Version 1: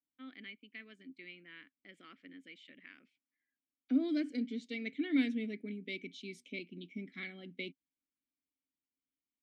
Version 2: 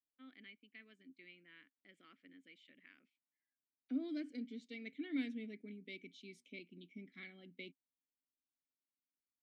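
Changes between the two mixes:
first voice -8.0 dB; second voice -8.5 dB

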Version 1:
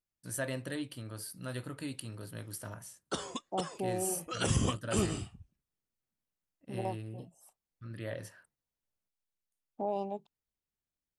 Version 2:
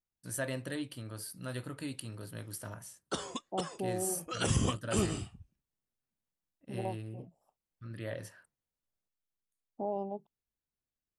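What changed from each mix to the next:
second voice: add boxcar filter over 21 samples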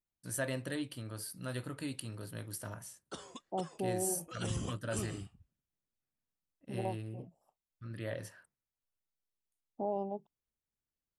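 background -9.5 dB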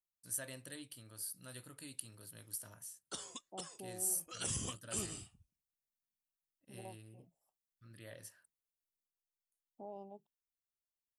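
background +9.0 dB; master: add pre-emphasis filter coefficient 0.8

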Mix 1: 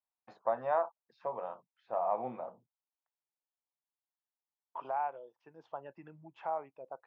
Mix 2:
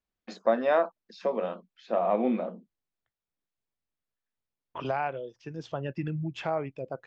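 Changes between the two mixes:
first voice: add elliptic high-pass 190 Hz, stop band 40 dB; master: remove band-pass filter 890 Hz, Q 3.2

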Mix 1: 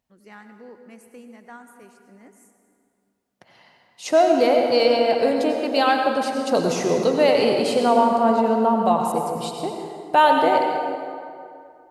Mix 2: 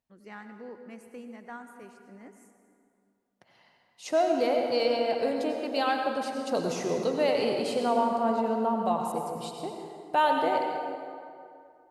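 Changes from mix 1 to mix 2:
first voice: add treble shelf 6.4 kHz -9 dB; second voice -8.5 dB

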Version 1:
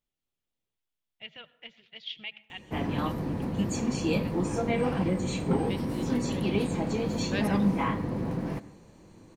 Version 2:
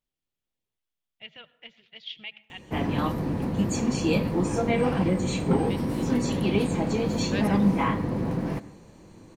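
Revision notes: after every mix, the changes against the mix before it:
background +3.5 dB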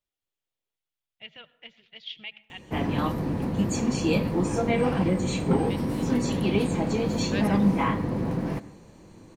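second voice: add high-pass 380 Hz

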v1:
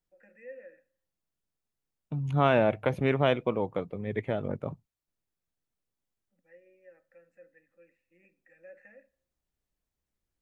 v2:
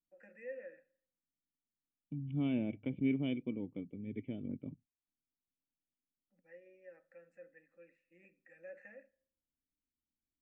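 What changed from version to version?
second voice: add cascade formant filter i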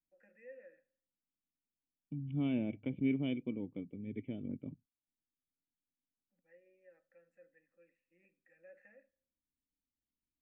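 first voice -7.5 dB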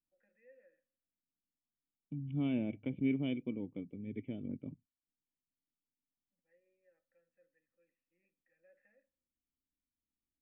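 first voice -9.5 dB

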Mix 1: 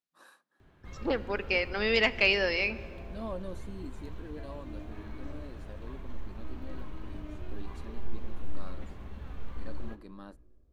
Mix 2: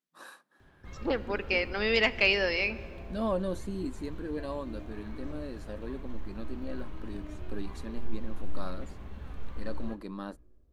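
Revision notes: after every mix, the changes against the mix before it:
first voice +8.5 dB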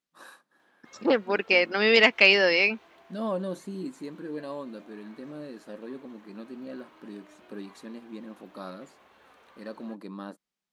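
second voice +8.0 dB; background: add high-pass 560 Hz 12 dB/octave; reverb: off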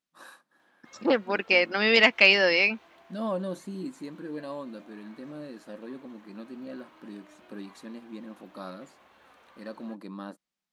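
master: add peaking EQ 420 Hz -6 dB 0.21 oct

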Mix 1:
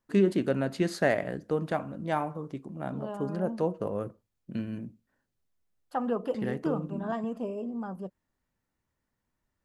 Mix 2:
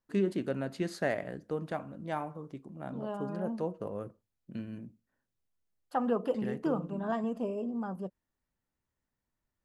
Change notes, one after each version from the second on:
first voice -6.0 dB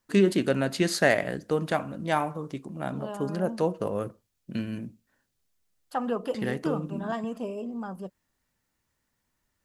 first voice +8.0 dB; master: add treble shelf 2 kHz +9.5 dB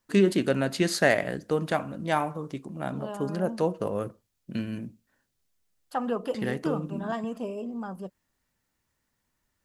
no change

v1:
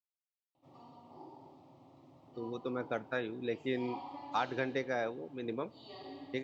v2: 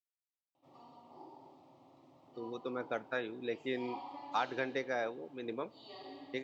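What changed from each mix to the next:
master: add bass shelf 170 Hz -11.5 dB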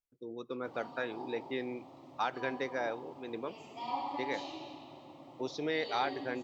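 speech: entry -2.15 s; background +8.5 dB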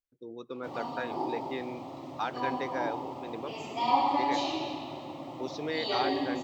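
background +11.5 dB

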